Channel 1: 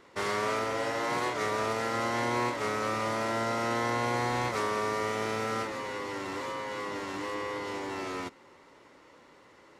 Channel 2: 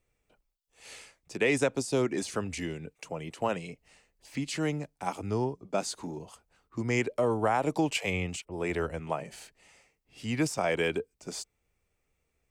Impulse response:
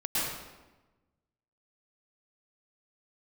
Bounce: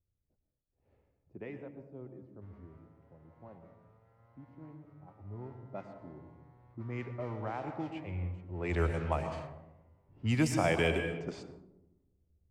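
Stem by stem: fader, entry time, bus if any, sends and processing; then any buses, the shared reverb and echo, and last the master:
-16.0 dB, 2.25 s, no send, amplifier tone stack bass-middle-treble 10-0-10
1.36 s -12 dB -> 1.57 s -22 dB -> 5.17 s -22 dB -> 5.74 s -14 dB -> 8.28 s -14 dB -> 8.82 s -2.5 dB, 0.00 s, send -13.5 dB, band-stop 460 Hz, Q 12; de-esser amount 70%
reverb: on, RT60 1.1 s, pre-delay 101 ms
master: level-controlled noise filter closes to 380 Hz, open at -29.5 dBFS; peaking EQ 89 Hz +13 dB 0.83 oct

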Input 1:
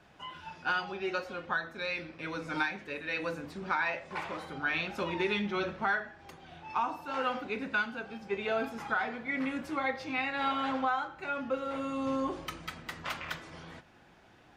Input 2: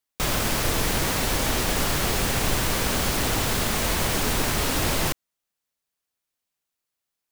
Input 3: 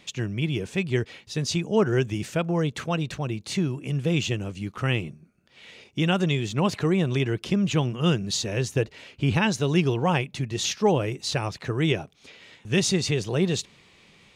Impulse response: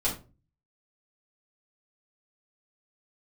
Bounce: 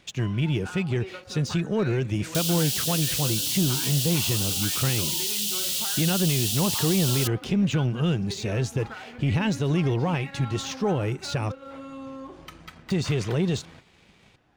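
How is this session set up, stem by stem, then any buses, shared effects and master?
-5.5 dB, 0.00 s, no send, compression, threshold -36 dBFS, peak gain reduction 10 dB
-2.0 dB, 2.15 s, no send, steep high-pass 2.8 kHz 72 dB/octave
-4.0 dB, 0.00 s, muted 11.52–12.90 s, no send, peak limiter -17 dBFS, peak gain reduction 6 dB; de-esser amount 70%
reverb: none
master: bass shelf 230 Hz +5.5 dB; waveshaping leveller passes 1

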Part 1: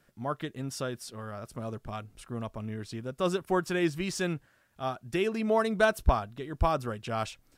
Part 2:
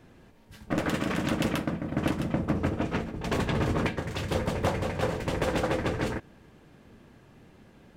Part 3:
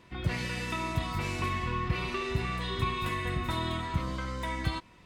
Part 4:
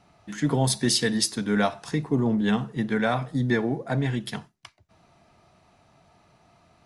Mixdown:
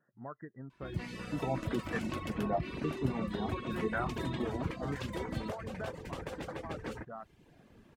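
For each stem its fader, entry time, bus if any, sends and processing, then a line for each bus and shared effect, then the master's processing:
-8.5 dB, 0.00 s, no send, compression, threshold -31 dBFS, peak gain reduction 14 dB; FFT band-pass 110–2000 Hz
-4.5 dB, 0.85 s, no send, compression 6:1, threshold -32 dBFS, peak gain reduction 10.5 dB; attacks held to a fixed rise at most 320 dB/s
-10.5 dB, 0.70 s, no send, peaking EQ 270 Hz +8.5 dB 1.9 oct
-13.5 dB, 0.90 s, no send, LFO low-pass saw down 0.99 Hz 430–1600 Hz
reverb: none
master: reverb removal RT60 0.65 s

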